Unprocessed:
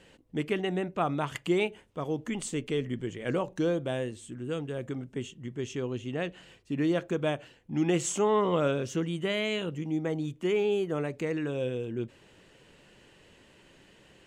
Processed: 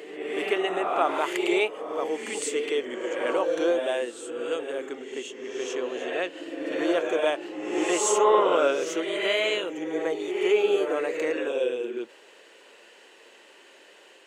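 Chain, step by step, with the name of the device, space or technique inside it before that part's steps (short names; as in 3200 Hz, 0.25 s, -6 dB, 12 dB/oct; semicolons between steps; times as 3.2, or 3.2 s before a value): ghost voice (reverse; reverb RT60 1.4 s, pre-delay 31 ms, DRR 1.5 dB; reverse; HPF 380 Hz 24 dB/oct); gain +5 dB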